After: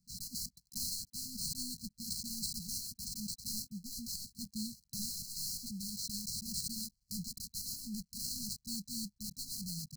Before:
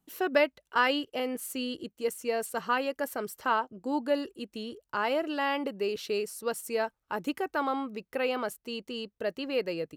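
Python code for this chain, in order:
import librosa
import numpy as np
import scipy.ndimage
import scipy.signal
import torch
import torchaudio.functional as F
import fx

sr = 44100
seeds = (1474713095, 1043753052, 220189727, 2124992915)

p1 = fx.block_float(x, sr, bits=3)
p2 = fx.peak_eq(p1, sr, hz=8600.0, db=6.5, octaves=0.42)
p3 = fx.rider(p2, sr, range_db=10, speed_s=2.0)
p4 = p2 + F.gain(torch.from_numpy(p3), 1.0).numpy()
p5 = fx.sample_hold(p4, sr, seeds[0], rate_hz=12000.0, jitter_pct=20)
p6 = 10.0 ** (-23.5 / 20.0) * np.tanh(p5 / 10.0 ** (-23.5 / 20.0))
p7 = fx.brickwall_bandstop(p6, sr, low_hz=230.0, high_hz=4000.0)
y = F.gain(torch.from_numpy(p7), -2.5).numpy()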